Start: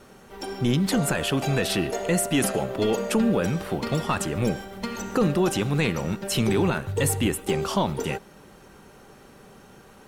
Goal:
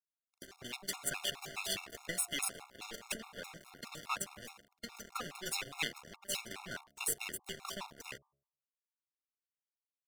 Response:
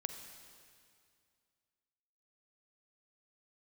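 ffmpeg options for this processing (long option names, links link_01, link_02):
-filter_complex "[0:a]asettb=1/sr,asplit=3[link_01][link_02][link_03];[link_01]atrim=end=5.144[link_04];[link_02]atrim=start=5.14:end=5.86,asetpts=PTS-STARTPTS,afade=type=in:duration=0.004:curve=qsin,afade=type=out:start_time=0.716:duration=0.004:curve=qsin,aecho=1:1:7.4:0.94,atrim=end_sample=31752[link_05];[link_03]atrim=start=5.856[link_06];[link_04][link_05]acrossfade=duration=0.004:curve1=hsin:curve2=qsin[link_07];[link_07][link_06]acrossfade=duration=0.004:curve1=qsin:curve2=hsin,aeval=exprs='0.376*(cos(1*acos(clip(val(0)/0.376,-1,1)))-cos(1*PI/2))+0.0422*(cos(4*acos(clip(val(0)/0.376,-1,1)))-cos(4*PI/2))+0.00376*(cos(5*acos(clip(val(0)/0.376,-1,1)))-cos(5*PI/2))':channel_layout=same,equalizer=frequency=95:width_type=o:width=0.34:gain=-12,acrossover=split=210|1100[link_08][link_09][link_10];[link_08]acompressor=threshold=-42dB:ratio=6[link_11];[link_09]alimiter=level_in=8dB:limit=-24dB:level=0:latency=1:release=12,volume=-8dB[link_12];[link_11][link_12][link_10]amix=inputs=3:normalize=0,aeval=exprs='sgn(val(0))*max(abs(val(0))-0.0266,0)':channel_layout=same,bandreject=frequency=69.86:width_type=h:width=4,bandreject=frequency=139.72:width_type=h:width=4,bandreject=frequency=209.58:width_type=h:width=4,bandreject=frequency=279.44:width_type=h:width=4,bandreject=frequency=349.3:width_type=h:width=4,bandreject=frequency=419.16:width_type=h:width=4,bandreject=frequency=489.02:width_type=h:width=4,bandreject=frequency=558.88:width_type=h:width=4,bandreject=frequency=628.74:width_type=h:width=4,bandreject=frequency=698.6:width_type=h:width=4,bandreject=frequency=768.46:width_type=h:width=4,bandreject=frequency=838.32:width_type=h:width=4,bandreject=frequency=908.18:width_type=h:width=4,bandreject=frequency=978.04:width_type=h:width=4,bandreject=frequency=1047.9:width_type=h:width=4,bandreject=frequency=1117.76:width_type=h:width=4,bandreject=frequency=1187.62:width_type=h:width=4,afftfilt=real='re*gt(sin(2*PI*4.8*pts/sr)*(1-2*mod(floor(b*sr/1024/710),2)),0)':imag='im*gt(sin(2*PI*4.8*pts/sr)*(1-2*mod(floor(b*sr/1024/710),2)),0)':win_size=1024:overlap=0.75,volume=-1.5dB"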